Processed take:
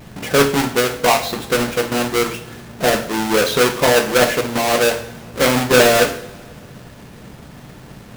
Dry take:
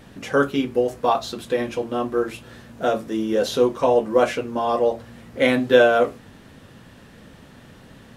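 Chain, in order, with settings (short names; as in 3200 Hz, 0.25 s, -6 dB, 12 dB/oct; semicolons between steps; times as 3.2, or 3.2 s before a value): half-waves squared off; in parallel at +1.5 dB: limiter -11.5 dBFS, peak gain reduction 9 dB; on the sum: harmonic-percussive split percussive +4 dB; two-slope reverb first 0.58 s, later 2.6 s, from -21 dB, DRR 5.5 dB; gain -7.5 dB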